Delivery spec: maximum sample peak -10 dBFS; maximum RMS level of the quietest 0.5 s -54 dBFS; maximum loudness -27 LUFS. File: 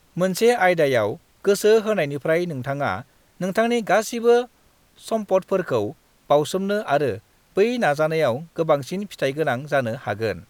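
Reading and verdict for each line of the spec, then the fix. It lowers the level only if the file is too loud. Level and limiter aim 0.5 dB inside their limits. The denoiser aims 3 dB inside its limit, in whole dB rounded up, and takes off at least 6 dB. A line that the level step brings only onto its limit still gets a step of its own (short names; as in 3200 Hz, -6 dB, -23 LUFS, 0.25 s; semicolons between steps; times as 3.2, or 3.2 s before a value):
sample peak -5.5 dBFS: fail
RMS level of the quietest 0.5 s -58 dBFS: OK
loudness -21.5 LUFS: fail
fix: gain -6 dB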